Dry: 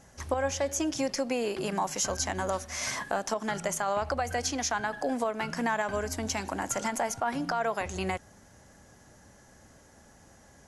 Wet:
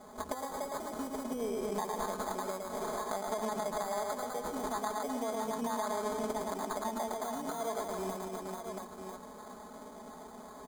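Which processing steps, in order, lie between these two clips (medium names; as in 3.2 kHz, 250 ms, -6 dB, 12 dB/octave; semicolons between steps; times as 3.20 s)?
bass shelf 110 Hz -12 dB; reverse bouncing-ball echo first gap 110 ms, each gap 1.3×, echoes 5; sample-and-hold 16×; graphic EQ 125/250/500/1000/2000/4000/8000 Hz -7/+6/+4/+7/-7/-3/+6 dB; compression 4:1, threshold -39 dBFS, peak gain reduction 17 dB; comb 4.7 ms, depth 95%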